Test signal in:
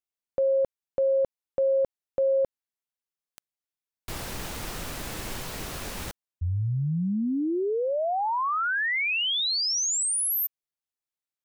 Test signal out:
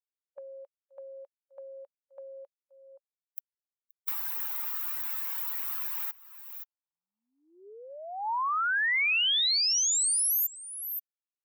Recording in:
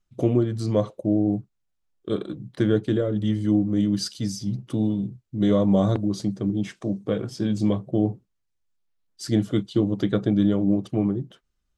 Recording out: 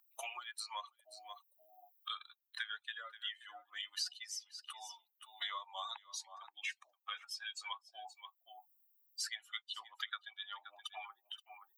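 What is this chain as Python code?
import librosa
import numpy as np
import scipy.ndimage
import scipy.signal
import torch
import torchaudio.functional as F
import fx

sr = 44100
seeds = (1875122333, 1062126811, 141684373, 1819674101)

p1 = fx.bin_expand(x, sr, power=2.0)
p2 = scipy.signal.sosfilt(scipy.signal.butter(8, 890.0, 'highpass', fs=sr, output='sos'), p1)
p3 = p2 + fx.echo_single(p2, sr, ms=525, db=-23.0, dry=0)
p4 = fx.band_squash(p3, sr, depth_pct=100)
y = p4 * 10.0 ** (3.5 / 20.0)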